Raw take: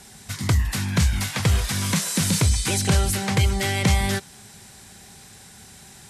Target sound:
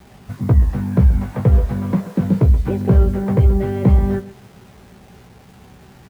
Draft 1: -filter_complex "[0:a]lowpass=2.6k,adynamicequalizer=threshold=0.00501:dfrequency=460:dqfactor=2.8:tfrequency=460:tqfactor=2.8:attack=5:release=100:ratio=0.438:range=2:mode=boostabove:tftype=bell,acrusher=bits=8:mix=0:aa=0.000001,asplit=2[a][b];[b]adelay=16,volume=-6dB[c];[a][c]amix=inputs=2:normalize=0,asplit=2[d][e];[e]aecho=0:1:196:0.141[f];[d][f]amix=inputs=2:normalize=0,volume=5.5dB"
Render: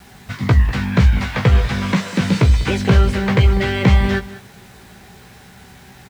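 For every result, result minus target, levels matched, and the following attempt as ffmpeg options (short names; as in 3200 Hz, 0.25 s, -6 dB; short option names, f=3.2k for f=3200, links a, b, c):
2000 Hz band +15.5 dB; echo 66 ms late
-filter_complex "[0:a]lowpass=680,adynamicequalizer=threshold=0.00501:dfrequency=460:dqfactor=2.8:tfrequency=460:tqfactor=2.8:attack=5:release=100:ratio=0.438:range=2:mode=boostabove:tftype=bell,acrusher=bits=8:mix=0:aa=0.000001,asplit=2[a][b];[b]adelay=16,volume=-6dB[c];[a][c]amix=inputs=2:normalize=0,asplit=2[d][e];[e]aecho=0:1:196:0.141[f];[d][f]amix=inputs=2:normalize=0,volume=5.5dB"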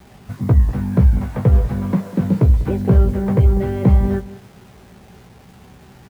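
echo 66 ms late
-filter_complex "[0:a]lowpass=680,adynamicequalizer=threshold=0.00501:dfrequency=460:dqfactor=2.8:tfrequency=460:tqfactor=2.8:attack=5:release=100:ratio=0.438:range=2:mode=boostabove:tftype=bell,acrusher=bits=8:mix=0:aa=0.000001,asplit=2[a][b];[b]adelay=16,volume=-6dB[c];[a][c]amix=inputs=2:normalize=0,asplit=2[d][e];[e]aecho=0:1:130:0.141[f];[d][f]amix=inputs=2:normalize=0,volume=5.5dB"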